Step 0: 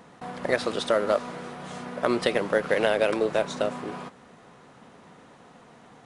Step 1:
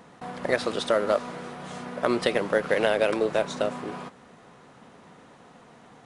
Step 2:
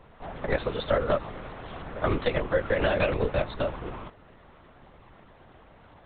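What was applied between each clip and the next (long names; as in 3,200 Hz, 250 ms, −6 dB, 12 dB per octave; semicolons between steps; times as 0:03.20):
no processing that can be heard
linear-prediction vocoder at 8 kHz whisper; level −1.5 dB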